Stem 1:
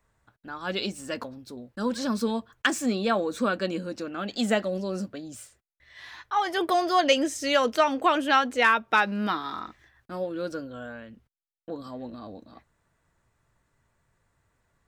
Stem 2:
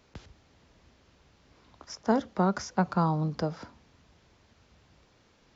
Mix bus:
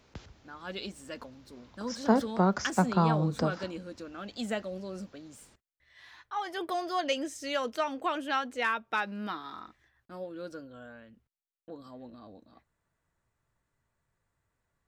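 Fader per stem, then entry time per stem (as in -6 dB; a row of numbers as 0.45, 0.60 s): -9.0, +0.5 dB; 0.00, 0.00 s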